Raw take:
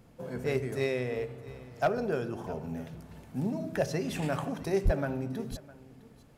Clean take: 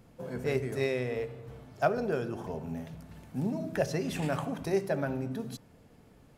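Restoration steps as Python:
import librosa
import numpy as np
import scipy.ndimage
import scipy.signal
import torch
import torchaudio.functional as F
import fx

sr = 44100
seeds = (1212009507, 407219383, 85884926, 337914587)

y = fx.fix_declip(x, sr, threshold_db=-18.0)
y = fx.highpass(y, sr, hz=140.0, slope=24, at=(4.84, 4.96), fade=0.02)
y = fx.fix_echo_inverse(y, sr, delay_ms=658, level_db=-20.0)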